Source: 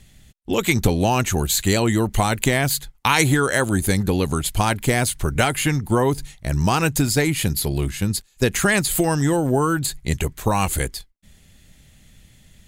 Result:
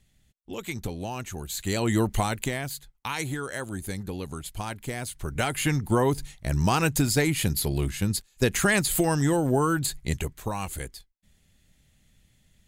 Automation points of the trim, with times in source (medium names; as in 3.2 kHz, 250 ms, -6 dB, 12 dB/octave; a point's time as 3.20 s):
1.45 s -15 dB
2.00 s -3 dB
2.73 s -14 dB
5.01 s -14 dB
5.72 s -4 dB
10.00 s -4 dB
10.58 s -12 dB